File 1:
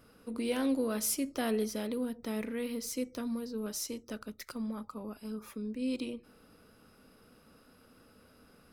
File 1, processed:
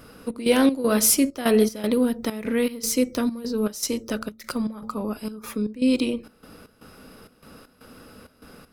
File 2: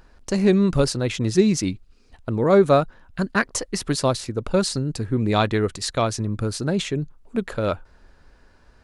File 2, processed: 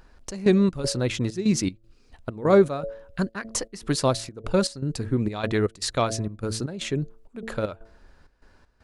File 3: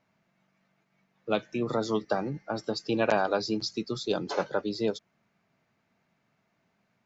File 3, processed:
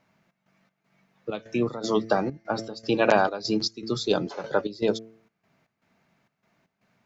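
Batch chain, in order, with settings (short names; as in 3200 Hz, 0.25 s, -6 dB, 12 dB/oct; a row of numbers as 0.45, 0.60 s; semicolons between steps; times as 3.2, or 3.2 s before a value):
de-hum 111.6 Hz, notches 6; step gate "xxxx..xxx..xx" 196 bpm -12 dB; normalise peaks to -6 dBFS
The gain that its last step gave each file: +14.0, -1.5, +5.5 dB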